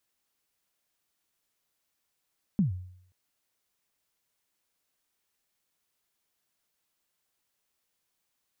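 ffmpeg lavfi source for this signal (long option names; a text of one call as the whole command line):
ffmpeg -f lavfi -i "aevalsrc='0.119*pow(10,-3*t/0.67)*sin(2*PI*(220*0.127/log(91/220)*(exp(log(91/220)*min(t,0.127)/0.127)-1)+91*max(t-0.127,0)))':duration=0.53:sample_rate=44100" out.wav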